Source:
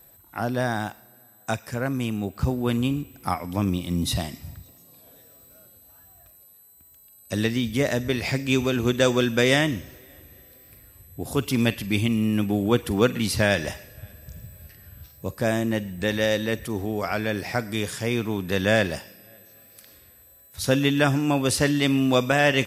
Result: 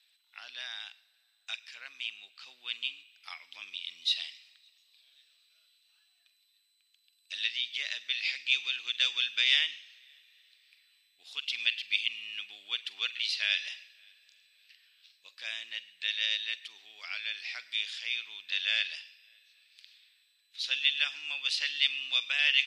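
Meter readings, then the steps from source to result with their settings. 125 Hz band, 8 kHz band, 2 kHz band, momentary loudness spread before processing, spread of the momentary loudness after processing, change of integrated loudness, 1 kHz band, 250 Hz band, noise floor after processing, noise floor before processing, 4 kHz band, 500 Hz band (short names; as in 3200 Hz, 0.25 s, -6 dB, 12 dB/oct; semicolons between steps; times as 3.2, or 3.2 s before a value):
under -40 dB, -15.0 dB, -4.5 dB, 14 LU, 18 LU, -6.5 dB, -24.0 dB, under -40 dB, -71 dBFS, -53 dBFS, +2.5 dB, under -35 dB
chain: Butterworth band-pass 3300 Hz, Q 1.7; gain +3 dB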